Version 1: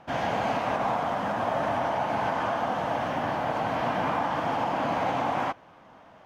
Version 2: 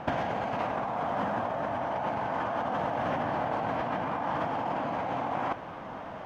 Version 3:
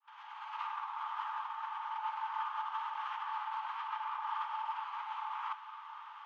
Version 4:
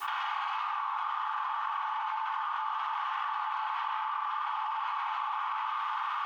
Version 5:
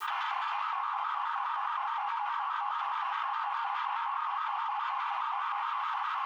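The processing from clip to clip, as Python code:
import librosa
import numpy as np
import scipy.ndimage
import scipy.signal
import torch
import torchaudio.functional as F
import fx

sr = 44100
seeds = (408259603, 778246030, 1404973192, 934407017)

y1 = fx.high_shelf(x, sr, hz=3400.0, db=-10.0)
y1 = fx.over_compress(y1, sr, threshold_db=-36.0, ratio=-1.0)
y1 = y1 * librosa.db_to_amplitude(5.0)
y2 = fx.fade_in_head(y1, sr, length_s=0.63)
y2 = scipy.signal.sosfilt(scipy.signal.cheby1(6, 9, 850.0, 'highpass', fs=sr, output='sos'), y2)
y2 = fx.high_shelf(y2, sr, hz=2400.0, db=-9.0)
y2 = y2 * librosa.db_to_amplitude(2.5)
y3 = fx.rider(y2, sr, range_db=3, speed_s=0.5)
y3 = fx.room_shoebox(y3, sr, seeds[0], volume_m3=2400.0, walls='furnished', distance_m=3.4)
y3 = fx.env_flatten(y3, sr, amount_pct=100)
y4 = fx.vibrato_shape(y3, sr, shape='square', rate_hz=4.8, depth_cents=100.0)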